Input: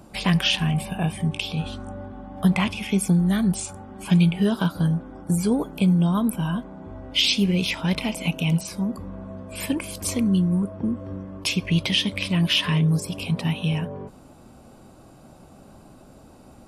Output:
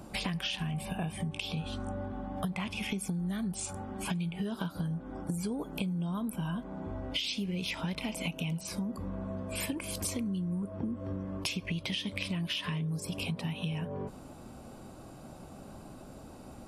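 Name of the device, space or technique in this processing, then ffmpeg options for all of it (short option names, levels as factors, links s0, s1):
serial compression, leveller first: -af "acompressor=threshold=0.0794:ratio=2.5,acompressor=threshold=0.0251:ratio=6"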